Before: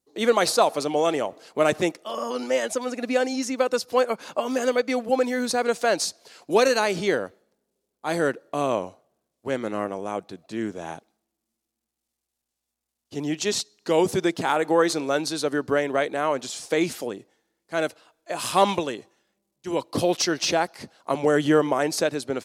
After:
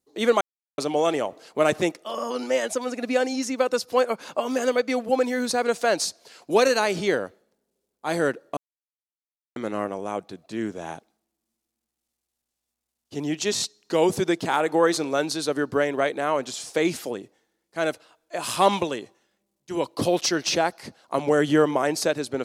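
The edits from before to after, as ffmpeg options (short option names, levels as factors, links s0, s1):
-filter_complex "[0:a]asplit=7[s0][s1][s2][s3][s4][s5][s6];[s0]atrim=end=0.41,asetpts=PTS-STARTPTS,afade=t=out:st=0.406:d=0.004:c=hsin[s7];[s1]atrim=start=0.41:end=0.78,asetpts=PTS-STARTPTS,volume=0[s8];[s2]atrim=start=0.78:end=8.57,asetpts=PTS-STARTPTS,afade=t=in:d=0.004:c=hsin,afade=t=out:st=7.786:d=0.004:c=hsin[s9];[s3]atrim=start=8.57:end=9.56,asetpts=PTS-STARTPTS,volume=0[s10];[s4]atrim=start=9.56:end=13.572,asetpts=PTS-STARTPTS,afade=t=in:d=0.004:c=hsin[s11];[s5]atrim=start=13.548:end=13.572[s12];[s6]atrim=start=13.548[s13];[s7][s8][s9][s10][s11]concat=n=5:v=0:a=1[s14];[s14][s12]acrossfade=d=0.004:c1=hsin:c2=hsin[s15];[s15][s13]acrossfade=d=0.004:c1=hsin:c2=hsin"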